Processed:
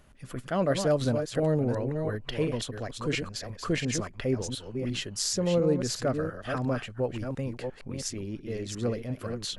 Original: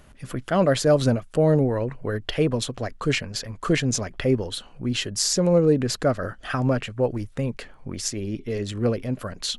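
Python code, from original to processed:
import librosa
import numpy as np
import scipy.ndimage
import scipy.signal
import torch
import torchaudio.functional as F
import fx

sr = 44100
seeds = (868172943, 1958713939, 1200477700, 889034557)

y = fx.reverse_delay(x, sr, ms=350, wet_db=-6.0)
y = y * 10.0 ** (-7.0 / 20.0)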